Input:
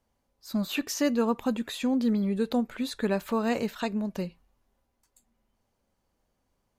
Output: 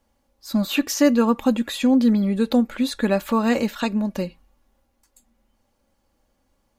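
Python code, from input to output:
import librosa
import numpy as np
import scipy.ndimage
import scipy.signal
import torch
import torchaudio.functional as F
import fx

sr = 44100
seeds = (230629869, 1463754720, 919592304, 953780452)

y = x + 0.43 * np.pad(x, (int(3.6 * sr / 1000.0), 0))[:len(x)]
y = y * librosa.db_to_amplitude(6.5)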